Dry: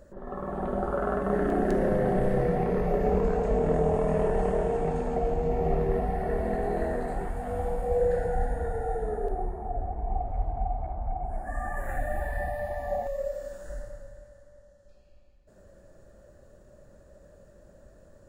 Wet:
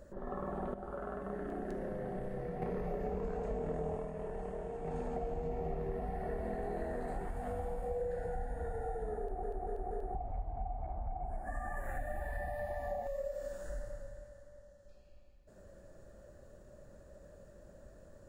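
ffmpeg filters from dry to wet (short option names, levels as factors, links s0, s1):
-filter_complex "[0:a]asplit=9[s0][s1][s2][s3][s4][s5][s6][s7][s8];[s0]atrim=end=0.742[s9];[s1]atrim=start=0.738:end=2.622,asetpts=PTS-STARTPTS,volume=0.299[s10];[s2]atrim=start=2.618:end=4.12,asetpts=PTS-STARTPTS,afade=t=out:st=1.312:d=0.19:silence=0.251189[s11];[s3]atrim=start=4.12:end=4.83,asetpts=PTS-STARTPTS,volume=0.251[s12];[s4]atrim=start=4.83:end=9.432,asetpts=PTS-STARTPTS,afade=t=in:d=0.19:silence=0.251189[s13];[s5]atrim=start=9.188:end=9.432[s14];[s6]atrim=start=9.188:end=9.432[s15];[s7]atrim=start=9.188:end=9.432[s16];[s8]atrim=start=10.148[s17];[s9][s10]acrossfade=d=0.004:c1=hsin:c2=hsin[s18];[s11][s12][s13]concat=n=3:v=0:a=1[s19];[s18][s19]acrossfade=d=0.004:c1=hsin:c2=hsin[s20];[s20][s14]acrossfade=d=0.004:c1=hsin:c2=hsin[s21];[s21][s15]acrossfade=d=0.004:c1=hsin:c2=hsin[s22];[s22][s16]acrossfade=d=0.004:c1=hsin:c2=hsin[s23];[s23][s17]acrossfade=d=0.004:c1=hsin:c2=hsin,acompressor=threshold=0.02:ratio=4,volume=0.794"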